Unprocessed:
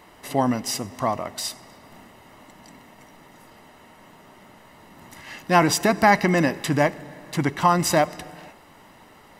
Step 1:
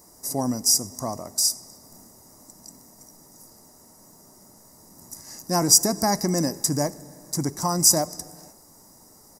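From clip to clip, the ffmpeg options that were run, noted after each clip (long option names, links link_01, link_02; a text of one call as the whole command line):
ffmpeg -i in.wav -af "firequalizer=gain_entry='entry(260,0);entry(3000,-23);entry(5200,14)':delay=0.05:min_phase=1,volume=-3dB" out.wav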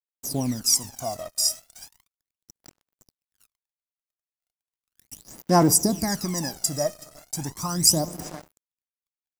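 ffmpeg -i in.wav -af "aecho=1:1:374:0.0891,acrusher=bits=5:mix=0:aa=0.5,aphaser=in_gain=1:out_gain=1:delay=1.6:decay=0.72:speed=0.36:type=sinusoidal,volume=-5dB" out.wav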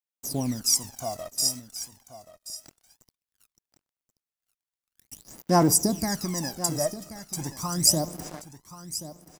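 ffmpeg -i in.wav -af "aecho=1:1:1080:0.2,volume=-2dB" out.wav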